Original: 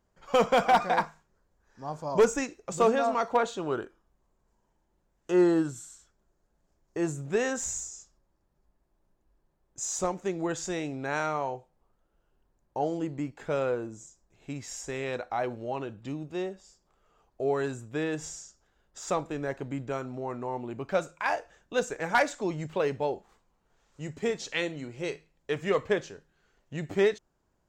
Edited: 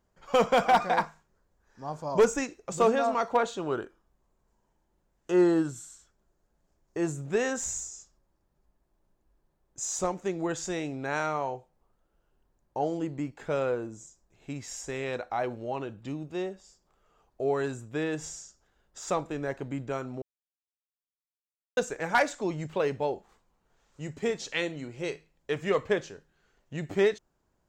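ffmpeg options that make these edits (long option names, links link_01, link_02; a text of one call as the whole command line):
ffmpeg -i in.wav -filter_complex "[0:a]asplit=3[link_01][link_02][link_03];[link_01]atrim=end=20.22,asetpts=PTS-STARTPTS,afade=type=out:start_time=20.216:duration=0.004:curve=hsin[link_04];[link_02]atrim=start=20.22:end=21.77,asetpts=PTS-STARTPTS,volume=0[link_05];[link_03]atrim=start=21.77,asetpts=PTS-STARTPTS,afade=type=in:duration=0.004:curve=hsin[link_06];[link_04][link_05][link_06]concat=n=3:v=0:a=1" out.wav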